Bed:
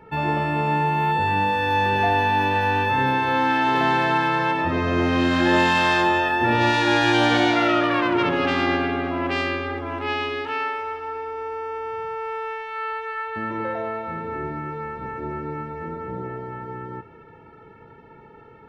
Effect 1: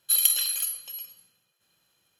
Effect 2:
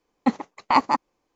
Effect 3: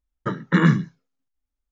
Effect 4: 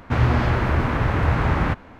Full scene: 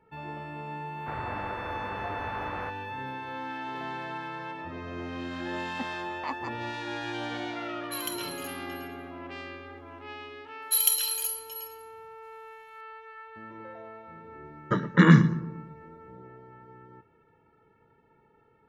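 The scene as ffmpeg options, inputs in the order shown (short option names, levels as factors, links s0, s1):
-filter_complex "[1:a]asplit=2[s0][s1];[0:a]volume=0.15[s2];[4:a]acrossover=split=380 2100:gain=0.158 1 0.126[s3][s4][s5];[s3][s4][s5]amix=inputs=3:normalize=0[s6];[s0]lowpass=f=2400:p=1[s7];[3:a]asplit=2[s8][s9];[s9]adelay=115,lowpass=f=1300:p=1,volume=0.2,asplit=2[s10][s11];[s11]adelay=115,lowpass=f=1300:p=1,volume=0.54,asplit=2[s12][s13];[s13]adelay=115,lowpass=f=1300:p=1,volume=0.54,asplit=2[s14][s15];[s15]adelay=115,lowpass=f=1300:p=1,volume=0.54,asplit=2[s16][s17];[s17]adelay=115,lowpass=f=1300:p=1,volume=0.54[s18];[s8][s10][s12][s14][s16][s18]amix=inputs=6:normalize=0[s19];[s6]atrim=end=1.99,asetpts=PTS-STARTPTS,volume=0.299,afade=t=in:d=0.004:c=hsin,afade=t=out:st=1.986:d=0.004:c=hsin,adelay=960[s20];[2:a]atrim=end=1.35,asetpts=PTS-STARTPTS,volume=0.141,afade=t=in:d=0.004:c=hsin,afade=t=out:st=1.346:d=0.004:c=hsin,adelay=243873S[s21];[s7]atrim=end=2.19,asetpts=PTS-STARTPTS,volume=0.596,afade=t=in:d=0.004:c=hsin,afade=t=out:st=2.186:d=0.004:c=hsin,adelay=7820[s22];[s1]atrim=end=2.19,asetpts=PTS-STARTPTS,volume=0.75,afade=t=in:d=0.004:c=hsin,afade=t=out:st=2.186:d=0.004:c=hsin,adelay=10620[s23];[s19]atrim=end=1.71,asetpts=PTS-STARTPTS,afade=t=in:d=0.004:c=hsin,afade=t=out:st=1.706:d=0.004:c=hsin,adelay=14450[s24];[s2][s20][s21][s22][s23][s24]amix=inputs=6:normalize=0"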